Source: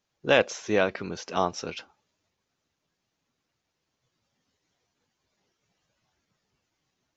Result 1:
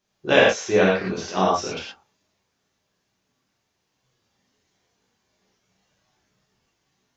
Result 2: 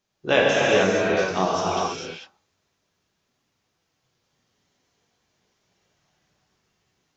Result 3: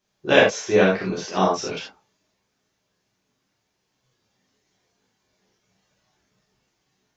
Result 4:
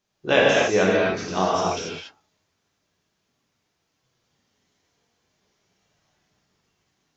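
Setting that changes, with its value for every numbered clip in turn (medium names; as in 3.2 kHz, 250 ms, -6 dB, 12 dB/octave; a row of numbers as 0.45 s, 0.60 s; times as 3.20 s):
gated-style reverb, gate: 140 ms, 480 ms, 100 ms, 310 ms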